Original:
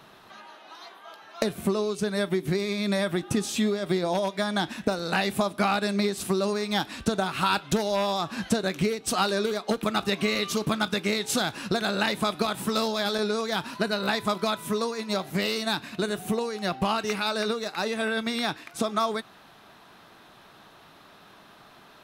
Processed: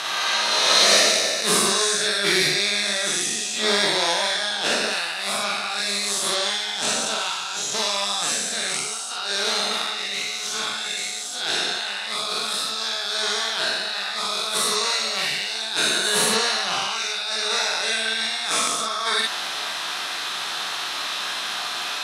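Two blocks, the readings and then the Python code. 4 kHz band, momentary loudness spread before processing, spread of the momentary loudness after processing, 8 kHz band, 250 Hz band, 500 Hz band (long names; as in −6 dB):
+12.0 dB, 5 LU, 8 LU, +14.5 dB, −8.0 dB, −1.5 dB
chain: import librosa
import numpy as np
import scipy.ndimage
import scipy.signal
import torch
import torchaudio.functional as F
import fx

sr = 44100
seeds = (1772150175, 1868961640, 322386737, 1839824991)

p1 = fx.spec_swells(x, sr, rise_s=2.28)
p2 = fx.weighting(p1, sr, curve='ITU-R 468')
p3 = fx.over_compress(p2, sr, threshold_db=-31.0, ratio=-1.0)
p4 = p3 + fx.room_early_taps(p3, sr, ms=(45, 59), db=(-3.5, -5.0), dry=0)
p5 = p4 + 10.0 ** (-50.0 / 20.0) * np.sin(2.0 * np.pi * 730.0 * np.arange(len(p4)) / sr)
y = p5 * librosa.db_to_amplitude(4.0)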